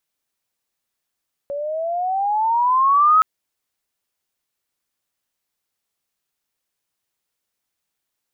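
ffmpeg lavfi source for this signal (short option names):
-f lavfi -i "aevalsrc='pow(10,(-9.5+14*(t/1.72-1))/20)*sin(2*PI*560*1.72/(14.5*log(2)/12)*(exp(14.5*log(2)/12*t/1.72)-1))':d=1.72:s=44100"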